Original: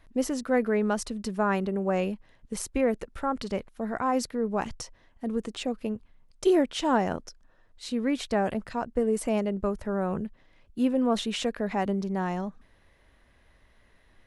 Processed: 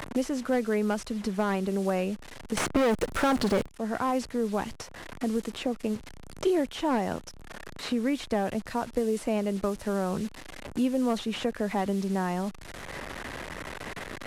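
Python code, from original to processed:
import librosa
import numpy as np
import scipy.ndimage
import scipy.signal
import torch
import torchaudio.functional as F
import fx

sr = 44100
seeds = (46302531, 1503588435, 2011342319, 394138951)

y = fx.delta_mod(x, sr, bps=64000, step_db=-41.5)
y = fx.leveller(y, sr, passes=5, at=(2.57, 3.67))
y = fx.band_squash(y, sr, depth_pct=70)
y = F.gain(torch.from_numpy(y), -1.5).numpy()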